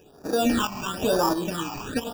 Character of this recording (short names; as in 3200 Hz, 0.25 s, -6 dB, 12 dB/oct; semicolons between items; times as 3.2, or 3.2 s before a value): aliases and images of a low sample rate 2100 Hz, jitter 0%; phasing stages 8, 1 Hz, lowest notch 470–3000 Hz; tremolo saw up 1.5 Hz, depth 60%